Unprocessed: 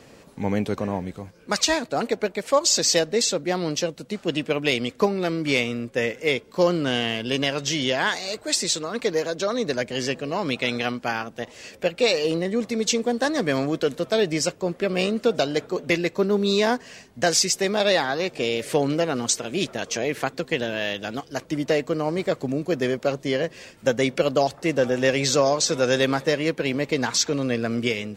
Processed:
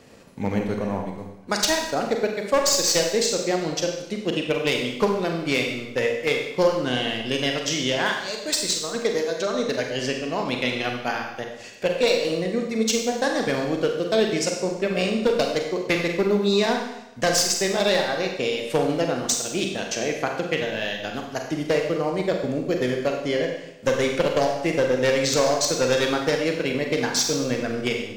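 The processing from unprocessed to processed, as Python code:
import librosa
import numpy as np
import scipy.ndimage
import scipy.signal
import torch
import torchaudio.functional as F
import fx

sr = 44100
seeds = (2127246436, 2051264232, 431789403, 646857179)

y = np.minimum(x, 2.0 * 10.0 ** (-14.5 / 20.0) - x)
y = fx.transient(y, sr, attack_db=2, sustain_db=-11)
y = fx.rev_schroeder(y, sr, rt60_s=0.89, comb_ms=32, drr_db=2.0)
y = y * librosa.db_to_amplitude(-2.0)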